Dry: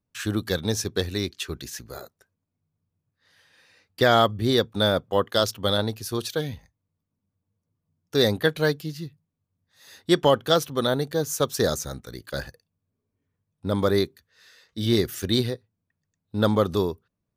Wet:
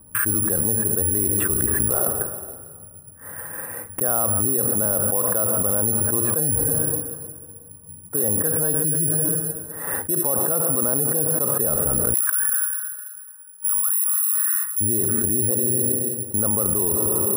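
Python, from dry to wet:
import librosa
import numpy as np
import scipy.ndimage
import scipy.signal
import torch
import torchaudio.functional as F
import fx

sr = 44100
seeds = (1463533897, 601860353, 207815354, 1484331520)

y = scipy.signal.sosfilt(scipy.signal.butter(4, 1400.0, 'lowpass', fs=sr, output='sos'), x)
y = fx.rev_plate(y, sr, seeds[0], rt60_s=1.7, hf_ratio=0.7, predelay_ms=0, drr_db=15.5)
y = (np.kron(scipy.signal.resample_poly(y, 1, 4), np.eye(4)[0]) * 4)[:len(y)]
y = fx.steep_highpass(y, sr, hz=1100.0, slope=36, at=(12.13, 14.8), fade=0.02)
y = fx.env_flatten(y, sr, amount_pct=100)
y = y * librosa.db_to_amplitude(-12.0)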